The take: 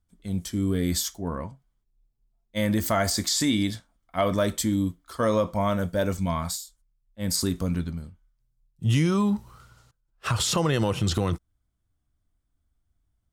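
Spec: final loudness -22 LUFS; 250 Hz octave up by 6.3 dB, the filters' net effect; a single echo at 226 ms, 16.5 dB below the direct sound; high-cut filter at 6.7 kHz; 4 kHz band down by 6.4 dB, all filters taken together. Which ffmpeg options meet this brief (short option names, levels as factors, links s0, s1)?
-af "lowpass=6700,equalizer=f=250:t=o:g=8.5,equalizer=f=4000:t=o:g=-7.5,aecho=1:1:226:0.15,volume=1.12"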